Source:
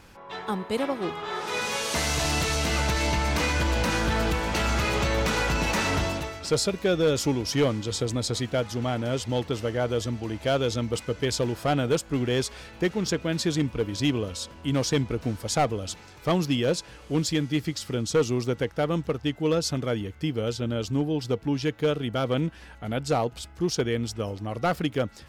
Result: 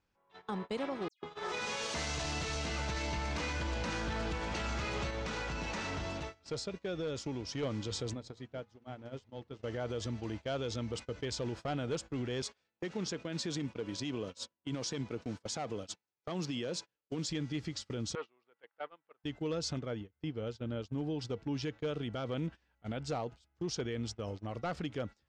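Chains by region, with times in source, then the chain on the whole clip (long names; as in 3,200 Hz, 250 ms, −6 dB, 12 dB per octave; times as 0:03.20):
0:01.08–0:01.52: parametric band 480 Hz +5 dB 0.5 octaves + all-pass dispersion lows, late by 143 ms, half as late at 2,900 Hz + expander for the loud parts, over −40 dBFS
0:05.10–0:07.63: downward compressor 5 to 1, threshold −28 dBFS + high-shelf EQ 12,000 Hz −6.5 dB
0:08.13–0:09.63: high-shelf EQ 3,000 Hz −8 dB + downward compressor 10 to 1, threshold −29 dBFS + mains-hum notches 60/120/180/240/300/360/420/480 Hz
0:12.42–0:17.30: high-pass filter 140 Hz + high-shelf EQ 7,600 Hz +4.5 dB + downward expander −38 dBFS
0:18.15–0:19.24: high-pass filter 870 Hz + high-frequency loss of the air 460 metres
0:19.79–0:20.98: high-shelf EQ 4,300 Hz −9 dB + expander for the loud parts, over −36 dBFS
whole clip: low-pass filter 7,300 Hz 24 dB per octave; noise gate −33 dBFS, range −23 dB; brickwall limiter −22 dBFS; level −6.5 dB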